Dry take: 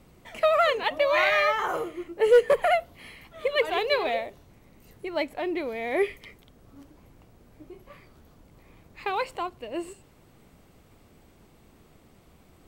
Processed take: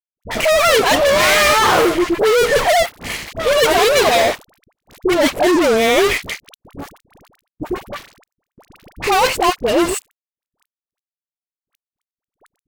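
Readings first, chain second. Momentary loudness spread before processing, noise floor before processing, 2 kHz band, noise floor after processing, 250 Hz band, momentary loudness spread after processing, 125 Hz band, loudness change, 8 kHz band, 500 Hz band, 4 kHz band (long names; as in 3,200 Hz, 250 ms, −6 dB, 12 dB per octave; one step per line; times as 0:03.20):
15 LU, −58 dBFS, +11.5 dB, below −85 dBFS, +17.0 dB, 15 LU, +18.5 dB, +11.0 dB, can't be measured, +10.0 dB, +16.0 dB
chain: fuzz pedal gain 40 dB, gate −46 dBFS
all-pass dispersion highs, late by 59 ms, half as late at 740 Hz
noise gate with hold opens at −44 dBFS
level +1.5 dB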